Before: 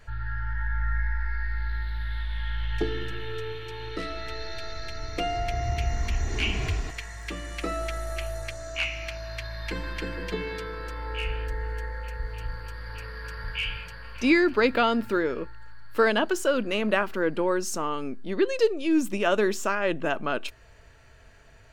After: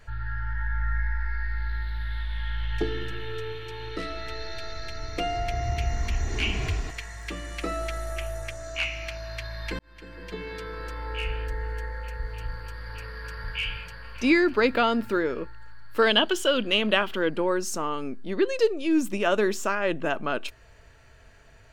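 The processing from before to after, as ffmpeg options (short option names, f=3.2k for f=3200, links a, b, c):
-filter_complex "[0:a]asettb=1/sr,asplit=3[a][b][c];[a]atrim=end=8.104[d];[b]atrim=start=8.1:end=8.64,asetpts=PTS-STARTPTS,afade=t=in:d=0.004:c=qsin,afade=t=out:st=0.536:d=0.004:c=qsin,equalizer=f=4.3k:w=6.1:g=-8[e];[c]atrim=start=8.636[f];[d][e]acrossfade=d=0.004:c1=hsin:c2=qsin[g];[g][f]acrossfade=d=0.004:c1=qsin:c2=hsin,asettb=1/sr,asplit=3[h][i][j];[h]atrim=end=16.024[k];[i]atrim=start=16.02:end=17.29,asetpts=PTS-STARTPTS,afade=t=in:d=0.004:c=qsin,afade=t=out:st=1.266:d=0.004:c=qsin,equalizer=f=3.2k:w=3.3:g=15[l];[j]atrim=start=17.286[m];[k][l]acrossfade=d=0.004:c1=hsin:c2=qsin[n];[n][m]acrossfade=d=0.004:c1=qsin:c2=hsin,asplit=2[o][p];[o]atrim=end=9.79,asetpts=PTS-STARTPTS,afade=t=out:st=9.786:d=0.004:c=hsin[q];[p]atrim=start=9.79,asetpts=PTS-STARTPTS,afade=t=in:d=1.03[r];[q][r]concat=n=2:v=0:a=1"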